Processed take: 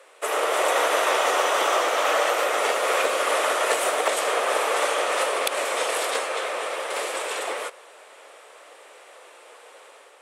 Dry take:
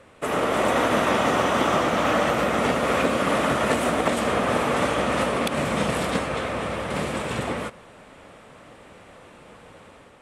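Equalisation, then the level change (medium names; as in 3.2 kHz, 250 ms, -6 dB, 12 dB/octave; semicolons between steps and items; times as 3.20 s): steep high-pass 400 Hz 36 dB/octave; treble shelf 4.5 kHz +8.5 dB; 0.0 dB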